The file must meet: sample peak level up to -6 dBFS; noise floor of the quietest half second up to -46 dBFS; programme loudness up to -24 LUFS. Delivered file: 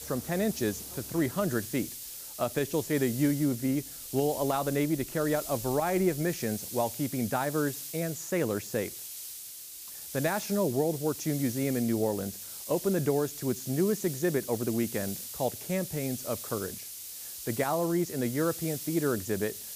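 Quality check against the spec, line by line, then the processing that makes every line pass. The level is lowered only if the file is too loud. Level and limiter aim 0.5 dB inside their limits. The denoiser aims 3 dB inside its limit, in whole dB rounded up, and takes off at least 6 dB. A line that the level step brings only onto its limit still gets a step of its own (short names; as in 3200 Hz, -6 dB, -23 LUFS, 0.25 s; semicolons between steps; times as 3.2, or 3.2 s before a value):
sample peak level -14.5 dBFS: OK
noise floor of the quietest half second -44 dBFS: fail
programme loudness -30.5 LUFS: OK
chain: denoiser 6 dB, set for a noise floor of -44 dBFS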